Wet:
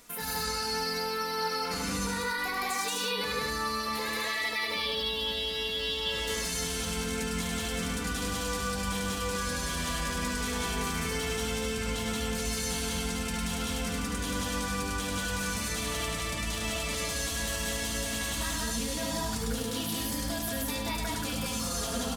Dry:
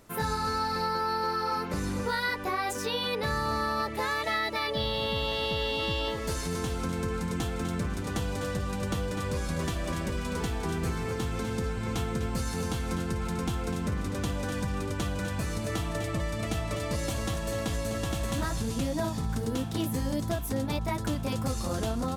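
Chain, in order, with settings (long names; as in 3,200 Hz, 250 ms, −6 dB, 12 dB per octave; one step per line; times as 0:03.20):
tilt shelving filter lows −7 dB, about 1,300 Hz
comb filter 4.2 ms, depth 58%
brickwall limiter −27.5 dBFS, peak gain reduction 13 dB
on a send: loudspeakers that aren't time-aligned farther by 35 metres −4 dB, 61 metres 0 dB, 86 metres −4 dB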